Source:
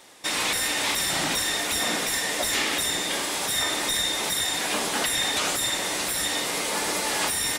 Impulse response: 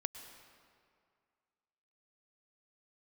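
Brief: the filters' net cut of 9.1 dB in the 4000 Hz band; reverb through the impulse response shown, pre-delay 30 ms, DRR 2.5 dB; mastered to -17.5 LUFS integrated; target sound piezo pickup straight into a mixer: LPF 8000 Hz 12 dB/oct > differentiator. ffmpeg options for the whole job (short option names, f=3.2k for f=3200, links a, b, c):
-filter_complex "[0:a]equalizer=f=4k:t=o:g=-4.5,asplit=2[a][b];[1:a]atrim=start_sample=2205,adelay=30[c];[b][c]afir=irnorm=-1:irlink=0,volume=-2dB[d];[a][d]amix=inputs=2:normalize=0,lowpass=8k,aderivative,volume=12dB"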